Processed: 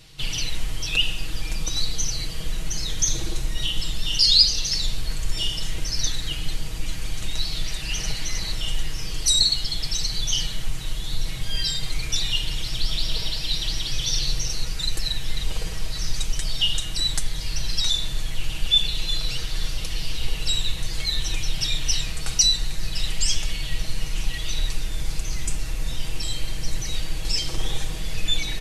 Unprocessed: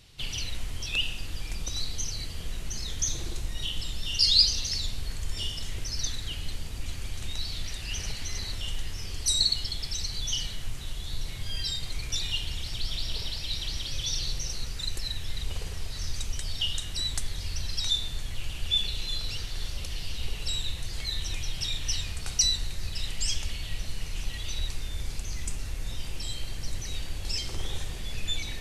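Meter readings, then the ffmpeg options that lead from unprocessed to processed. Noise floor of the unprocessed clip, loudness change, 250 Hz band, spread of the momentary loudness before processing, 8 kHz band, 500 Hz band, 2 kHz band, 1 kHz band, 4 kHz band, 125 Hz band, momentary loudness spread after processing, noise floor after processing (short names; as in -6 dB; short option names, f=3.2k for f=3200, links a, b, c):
-37 dBFS, +6.0 dB, +7.0 dB, 11 LU, +6.0 dB, +6.0 dB, +6.0 dB, +6.5 dB, +6.0 dB, +4.5 dB, 12 LU, -30 dBFS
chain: -filter_complex "[0:a]aecho=1:1:6.3:0.65,asplit=2[a][b];[b]alimiter=limit=-14dB:level=0:latency=1:release=458,volume=-2dB[c];[a][c]amix=inputs=2:normalize=0"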